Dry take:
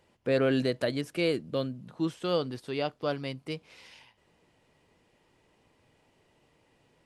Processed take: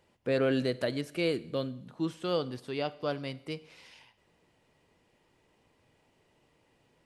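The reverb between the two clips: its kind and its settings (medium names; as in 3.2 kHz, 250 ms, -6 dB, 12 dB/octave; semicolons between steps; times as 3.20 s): Schroeder reverb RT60 0.76 s, combs from 32 ms, DRR 17.5 dB; trim -2 dB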